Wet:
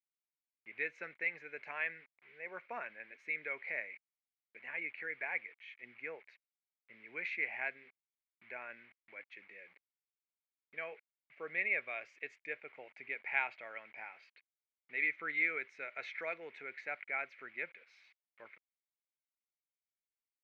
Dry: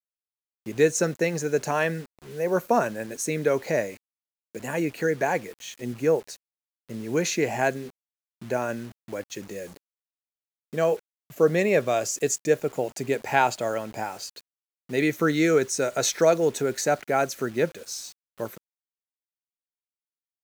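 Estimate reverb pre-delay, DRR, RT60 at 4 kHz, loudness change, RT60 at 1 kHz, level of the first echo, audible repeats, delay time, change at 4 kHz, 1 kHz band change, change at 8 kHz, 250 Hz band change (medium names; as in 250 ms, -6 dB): no reverb, no reverb, no reverb, -14.0 dB, no reverb, no echo, no echo, no echo, -22.0 dB, -20.0 dB, under -40 dB, -30.5 dB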